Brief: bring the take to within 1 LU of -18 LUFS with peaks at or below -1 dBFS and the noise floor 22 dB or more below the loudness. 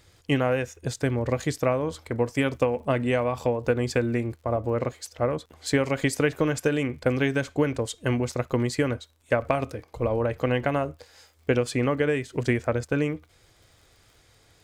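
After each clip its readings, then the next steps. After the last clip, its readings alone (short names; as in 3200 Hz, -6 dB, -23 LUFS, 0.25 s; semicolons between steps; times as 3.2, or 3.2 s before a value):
ticks 54/s; loudness -26.5 LUFS; peak -8.5 dBFS; loudness target -18.0 LUFS
-> de-click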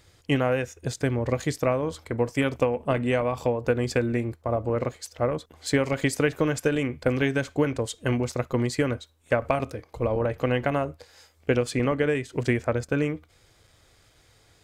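ticks 0.20/s; loudness -26.5 LUFS; peak -8.5 dBFS; loudness target -18.0 LUFS
-> gain +8.5 dB; limiter -1 dBFS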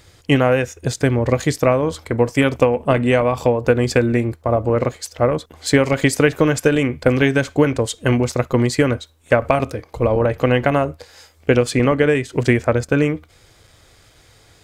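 loudness -18.0 LUFS; peak -1.0 dBFS; noise floor -52 dBFS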